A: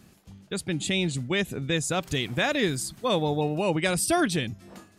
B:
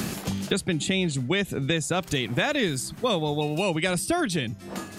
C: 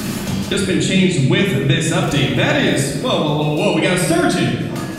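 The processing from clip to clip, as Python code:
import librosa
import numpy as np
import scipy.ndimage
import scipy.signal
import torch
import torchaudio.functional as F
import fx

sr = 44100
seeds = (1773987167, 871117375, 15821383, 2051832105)

y1 = fx.band_squash(x, sr, depth_pct=100)
y2 = fx.room_shoebox(y1, sr, seeds[0], volume_m3=1200.0, walls='mixed', distance_m=2.6)
y2 = y2 * librosa.db_to_amplitude(4.0)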